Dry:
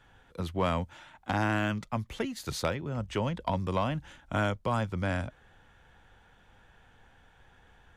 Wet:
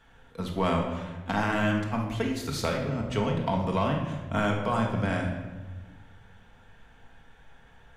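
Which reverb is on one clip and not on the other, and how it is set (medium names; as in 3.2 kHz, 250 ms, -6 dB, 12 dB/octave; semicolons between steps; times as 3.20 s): simulated room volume 860 m³, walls mixed, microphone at 1.6 m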